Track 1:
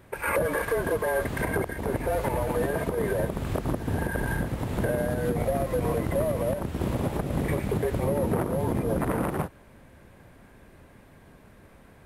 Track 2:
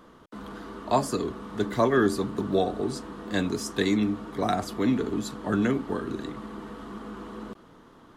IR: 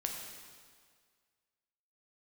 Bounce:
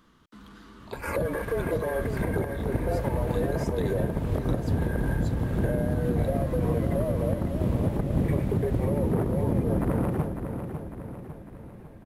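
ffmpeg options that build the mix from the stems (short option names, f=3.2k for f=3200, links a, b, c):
-filter_complex "[0:a]lowshelf=f=460:g=11,adelay=800,volume=-7.5dB,asplit=2[a][b];[b]volume=-8dB[c];[1:a]equalizer=f=570:w=0.66:g=-13.5,acompressor=threshold=-41dB:ratio=6,volume=-2dB[d];[c]aecho=0:1:551|1102|1653|2204|2755|3306|3857:1|0.51|0.26|0.133|0.0677|0.0345|0.0176[e];[a][d][e]amix=inputs=3:normalize=0,equalizer=f=8.7k:w=1.5:g=-2.5"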